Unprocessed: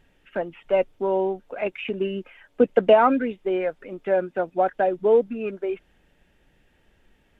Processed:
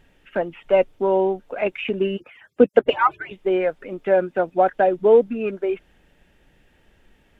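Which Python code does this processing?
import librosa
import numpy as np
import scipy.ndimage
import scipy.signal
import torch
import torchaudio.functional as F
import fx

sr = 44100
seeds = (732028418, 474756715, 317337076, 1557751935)

y = fx.hpss_only(x, sr, part='percussive', at=(2.16, 3.31), fade=0.02)
y = F.gain(torch.from_numpy(y), 4.0).numpy()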